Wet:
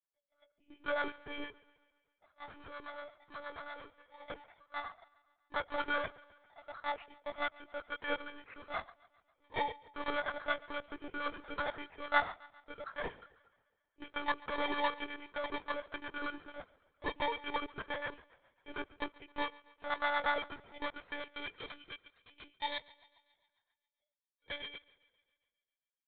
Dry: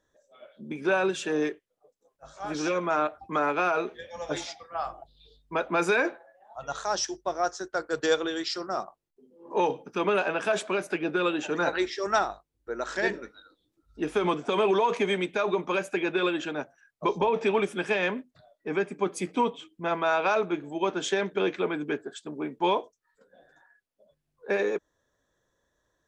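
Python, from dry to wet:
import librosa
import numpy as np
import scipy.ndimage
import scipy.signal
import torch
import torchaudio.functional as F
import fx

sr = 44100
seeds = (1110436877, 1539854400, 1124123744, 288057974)

p1 = fx.bit_reversed(x, sr, seeds[0], block=16)
p2 = fx.clip_hard(p1, sr, threshold_db=-31.5, at=(2.45, 4.25))
p3 = fx.harmonic_tremolo(p2, sr, hz=8.5, depth_pct=70, crossover_hz=650.0)
p4 = fx.filter_sweep_bandpass(p3, sr, from_hz=1400.0, to_hz=3100.0, start_s=20.65, end_s=21.93, q=0.96)
p5 = fx.power_curve(p4, sr, exponent=1.4)
p6 = p5 + fx.echo_thinned(p5, sr, ms=135, feedback_pct=59, hz=210.0, wet_db=-22.0, dry=0)
p7 = fx.lpc_monotone(p6, sr, seeds[1], pitch_hz=290.0, order=16)
y = F.gain(torch.from_numpy(p7), 5.0).numpy()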